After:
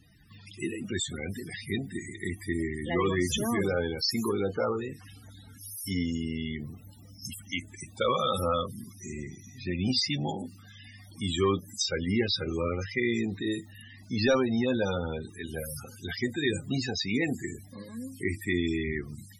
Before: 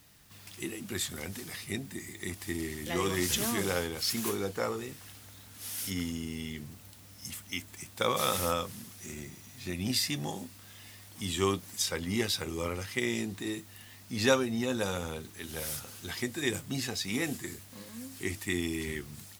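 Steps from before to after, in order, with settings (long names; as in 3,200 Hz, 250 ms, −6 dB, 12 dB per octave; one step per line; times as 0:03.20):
0:09.91–0:10.86: mains-hum notches 60/120/180/240/300/360/420/480 Hz
sine wavefolder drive 9 dB, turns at −10 dBFS
spectral peaks only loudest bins 32
level −7.5 dB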